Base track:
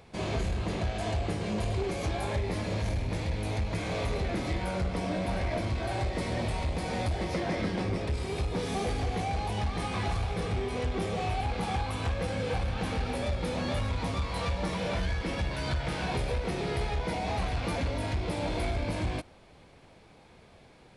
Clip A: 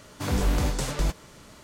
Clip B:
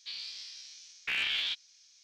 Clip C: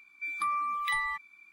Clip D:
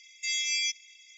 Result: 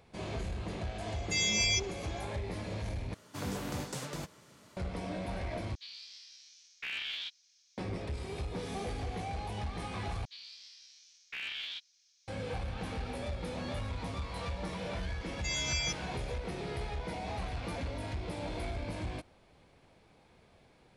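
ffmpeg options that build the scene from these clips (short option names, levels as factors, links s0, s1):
-filter_complex "[4:a]asplit=2[s0][s1];[2:a]asplit=2[s2][s3];[0:a]volume=0.447[s4];[1:a]highpass=f=88:w=0.5412,highpass=f=88:w=1.3066[s5];[s4]asplit=4[s6][s7][s8][s9];[s6]atrim=end=3.144[s10];[s5]atrim=end=1.63,asetpts=PTS-STARTPTS,volume=0.355[s11];[s7]atrim=start=4.766:end=5.754[s12];[s2]atrim=end=2.03,asetpts=PTS-STARTPTS,volume=0.447[s13];[s8]atrim=start=7.776:end=10.254[s14];[s3]atrim=end=2.03,asetpts=PTS-STARTPTS,volume=0.376[s15];[s9]atrim=start=12.276[s16];[s0]atrim=end=1.17,asetpts=PTS-STARTPTS,volume=0.944,afade=t=in:d=0.004:c=hsin,afade=t=out:st=1.166:d=0.004:c=hsin,adelay=1080[s17];[s1]atrim=end=1.17,asetpts=PTS-STARTPTS,volume=0.531,afade=t=in:d=0.004:c=hsin,afade=t=out:st=1.166:d=0.004:c=hsin,adelay=15210[s18];[s10][s11]acrossfade=d=0.004:c1=hsin:c2=hsin[s19];[s19][s12]acrossfade=d=0.004:c1=hsin:c2=hsin[s20];[s20][s13]acrossfade=d=0.004:c1=hsin:c2=hsin[s21];[s21][s14]acrossfade=d=0.004:c1=hsin:c2=hsin[s22];[s22][s15]acrossfade=d=0.004:c1=hsin:c2=hsin[s23];[s23][s16]acrossfade=d=0.004:c1=hsin:c2=hsin[s24];[s24][s17][s18]amix=inputs=3:normalize=0"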